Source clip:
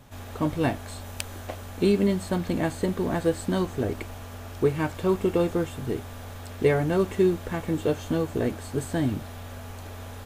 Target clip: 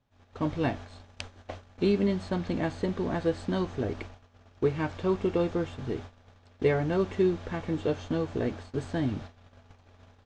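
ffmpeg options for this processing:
-af "agate=range=-20dB:threshold=-36dB:ratio=16:detection=peak,lowpass=f=5.9k:w=0.5412,lowpass=f=5.9k:w=1.3066,volume=-3.5dB"

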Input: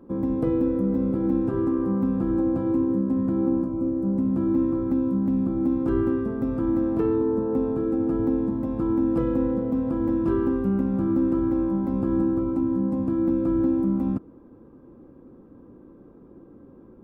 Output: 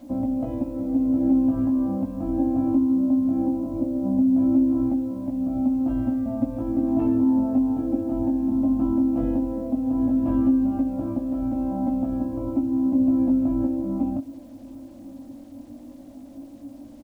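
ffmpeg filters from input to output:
-af "firequalizer=gain_entry='entry(110,0);entry(180,-12);entry(270,12);entry(410,-26);entry(590,13);entry(1100,-7);entry(1500,-10);entry(2700,-2);entry(4600,-10)':delay=0.05:min_phase=1,acompressor=threshold=-21dB:ratio=6,flanger=delay=16.5:depth=5.5:speed=0.17,acrusher=bits=10:mix=0:aa=0.000001,aecho=1:1:1147:0.0668,volume=5.5dB"

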